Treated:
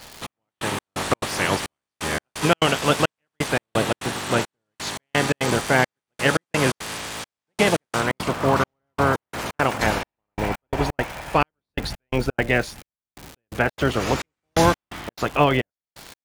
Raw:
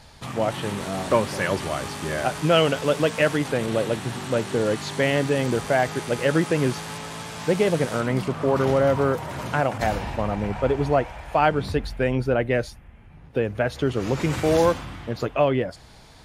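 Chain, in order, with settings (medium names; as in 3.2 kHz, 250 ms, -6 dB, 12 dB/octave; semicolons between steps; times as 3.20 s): spectral peaks clipped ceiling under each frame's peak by 14 dB; crackle 310 per s -30 dBFS; trance gate "xxx....xx..xx.xx" 172 bpm -60 dB; trim +2.5 dB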